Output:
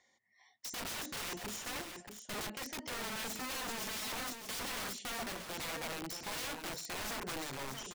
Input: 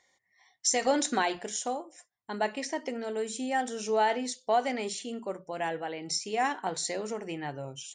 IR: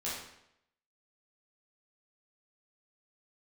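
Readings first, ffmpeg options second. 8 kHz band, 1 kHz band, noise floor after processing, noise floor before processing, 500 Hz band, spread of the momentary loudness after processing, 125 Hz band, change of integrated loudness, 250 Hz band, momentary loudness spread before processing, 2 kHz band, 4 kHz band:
-7.5 dB, -13.5 dB, -73 dBFS, -76 dBFS, -15.5 dB, 4 LU, -4.0 dB, -8.5 dB, -11.0 dB, 11 LU, -5.5 dB, -3.0 dB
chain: -filter_complex "[0:a]lowpass=8.4k,equalizer=f=230:t=o:w=0.36:g=8.5,acrossover=split=330|730[a][b][c];[c]acompressor=threshold=-39dB:ratio=10[d];[a][b][d]amix=inputs=3:normalize=0,aeval=exprs='(mod(44.7*val(0)+1,2)-1)/44.7':c=same,aecho=1:1:631:0.447,volume=-3dB"

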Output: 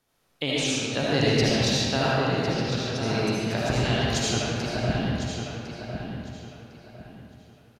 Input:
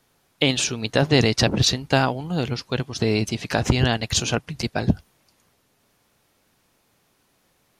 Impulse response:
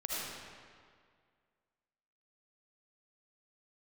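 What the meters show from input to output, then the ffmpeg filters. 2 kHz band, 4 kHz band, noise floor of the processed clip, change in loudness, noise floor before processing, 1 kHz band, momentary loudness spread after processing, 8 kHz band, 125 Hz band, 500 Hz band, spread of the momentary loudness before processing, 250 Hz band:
-2.5 dB, -3.0 dB, -67 dBFS, -3.5 dB, -66 dBFS, -2.0 dB, 14 LU, -4.0 dB, -3.0 dB, -2.0 dB, 8 LU, -2.5 dB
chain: -filter_complex "[0:a]asplit=2[a][b];[b]adelay=1054,lowpass=f=5k:p=1,volume=-7.5dB,asplit=2[c][d];[d]adelay=1054,lowpass=f=5k:p=1,volume=0.3,asplit=2[e][f];[f]adelay=1054,lowpass=f=5k:p=1,volume=0.3,asplit=2[g][h];[h]adelay=1054,lowpass=f=5k:p=1,volume=0.3[i];[a][c][e][g][i]amix=inputs=5:normalize=0[j];[1:a]atrim=start_sample=2205[k];[j][k]afir=irnorm=-1:irlink=0,volume=-7dB"

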